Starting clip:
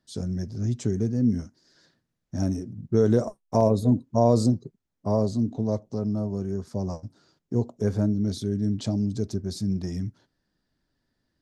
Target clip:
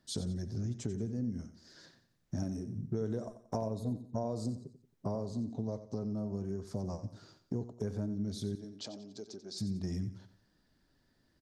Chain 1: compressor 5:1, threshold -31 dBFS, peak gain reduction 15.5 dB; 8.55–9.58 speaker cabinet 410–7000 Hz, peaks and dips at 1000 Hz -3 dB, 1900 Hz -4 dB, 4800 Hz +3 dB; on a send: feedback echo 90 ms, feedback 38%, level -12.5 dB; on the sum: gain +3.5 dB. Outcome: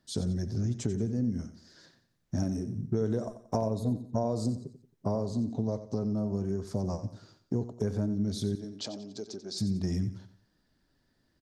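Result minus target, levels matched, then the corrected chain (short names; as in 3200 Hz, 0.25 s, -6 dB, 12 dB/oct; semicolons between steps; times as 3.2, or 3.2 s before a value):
compressor: peak gain reduction -6 dB
compressor 5:1, threshold -38.5 dBFS, peak gain reduction 21.5 dB; 8.55–9.58 speaker cabinet 410–7000 Hz, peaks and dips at 1000 Hz -3 dB, 1900 Hz -4 dB, 4800 Hz +3 dB; on a send: feedback echo 90 ms, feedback 38%, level -12.5 dB; on the sum: gain +3.5 dB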